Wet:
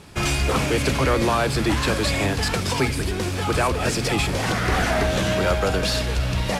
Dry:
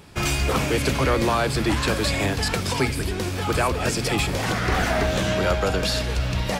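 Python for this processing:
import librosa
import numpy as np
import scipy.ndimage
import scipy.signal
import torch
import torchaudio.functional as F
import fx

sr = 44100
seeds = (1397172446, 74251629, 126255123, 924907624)

p1 = fx.cvsd(x, sr, bps=64000)
p2 = 10.0 ** (-25.0 / 20.0) * np.tanh(p1 / 10.0 ** (-25.0 / 20.0))
y = p1 + (p2 * librosa.db_to_amplitude(-10.5))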